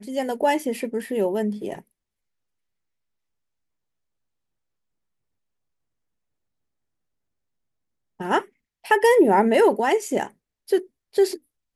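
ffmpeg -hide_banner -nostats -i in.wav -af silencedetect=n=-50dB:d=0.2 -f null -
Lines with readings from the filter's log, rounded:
silence_start: 1.82
silence_end: 8.20 | silence_duration: 6.38
silence_start: 8.49
silence_end: 8.84 | silence_duration: 0.35
silence_start: 10.31
silence_end: 10.68 | silence_duration: 0.36
silence_start: 10.87
silence_end: 11.13 | silence_duration: 0.27
silence_start: 11.38
silence_end: 11.76 | silence_duration: 0.38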